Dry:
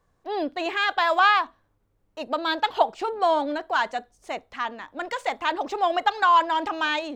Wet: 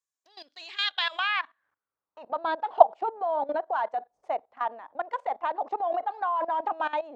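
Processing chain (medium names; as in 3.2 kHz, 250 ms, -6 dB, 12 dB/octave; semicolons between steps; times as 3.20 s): band-pass sweep 7.1 kHz -> 740 Hz, 0.24–2.49 s; level held to a coarse grid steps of 17 dB; trim +7.5 dB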